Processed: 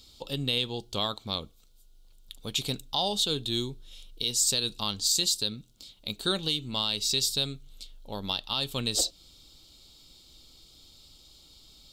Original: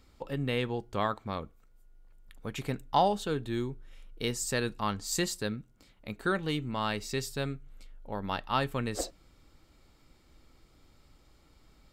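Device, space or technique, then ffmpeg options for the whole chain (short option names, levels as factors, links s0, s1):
over-bright horn tweeter: -af "highshelf=f=2600:t=q:w=3:g=12,alimiter=limit=0.188:level=0:latency=1:release=211"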